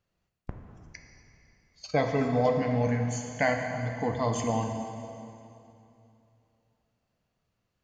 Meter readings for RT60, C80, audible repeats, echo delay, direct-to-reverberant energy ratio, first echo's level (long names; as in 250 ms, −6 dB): 2.8 s, 5.5 dB, no echo audible, no echo audible, 3.0 dB, no echo audible